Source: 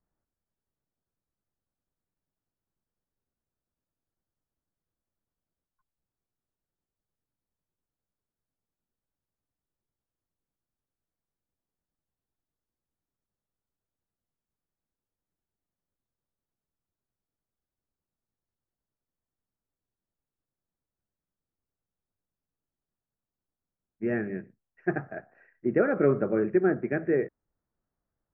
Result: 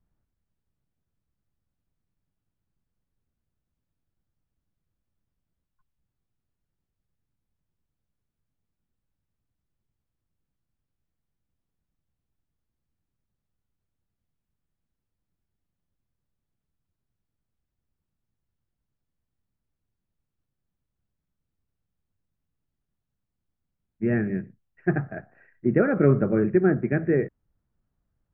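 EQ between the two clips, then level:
bass and treble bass +12 dB, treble −15 dB
high-shelf EQ 2,300 Hz +8.5 dB
0.0 dB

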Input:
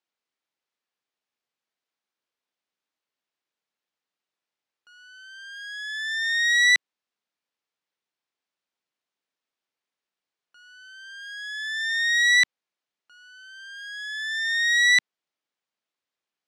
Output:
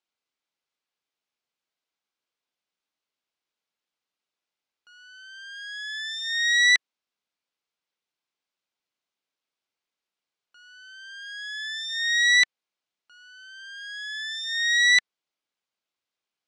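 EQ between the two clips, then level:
high-frequency loss of the air 64 metres
high-shelf EQ 3,300 Hz +7 dB
notch filter 1,800 Hz, Q 14
−1.0 dB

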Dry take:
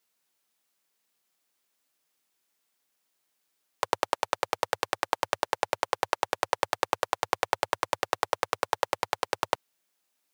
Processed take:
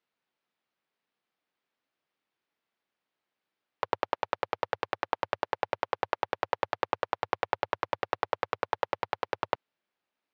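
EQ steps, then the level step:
high-frequency loss of the air 280 metres
−1.0 dB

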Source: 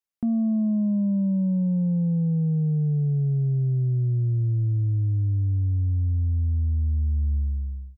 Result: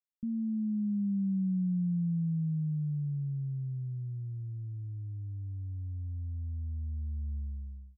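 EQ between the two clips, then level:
transistor ladder low-pass 230 Hz, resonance 40%
parametric band 110 Hz −8.5 dB 0.87 octaves
−2.0 dB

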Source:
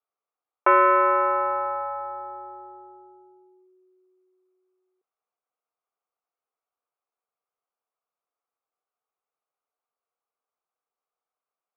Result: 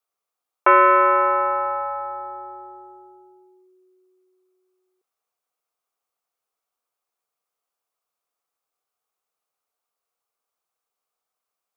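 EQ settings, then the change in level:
high-shelf EQ 2,700 Hz +7.5 dB
+2.5 dB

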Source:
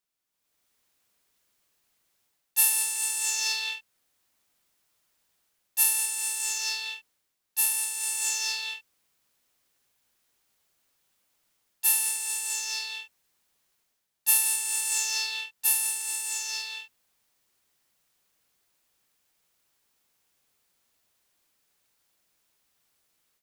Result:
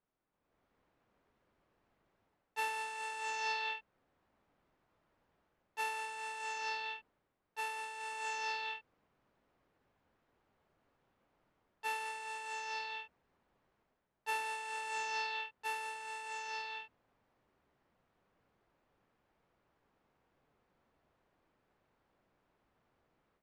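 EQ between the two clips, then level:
Bessel low-pass filter 920 Hz, order 2
+8.5 dB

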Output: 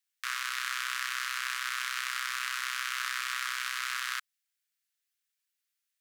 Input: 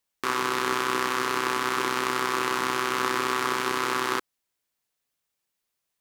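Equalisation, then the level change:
Butterworth high-pass 1,400 Hz 36 dB per octave
−3.0 dB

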